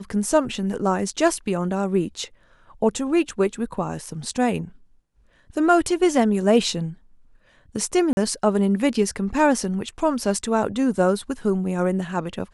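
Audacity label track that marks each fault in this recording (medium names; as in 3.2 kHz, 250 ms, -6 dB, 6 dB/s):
8.130000	8.170000	dropout 41 ms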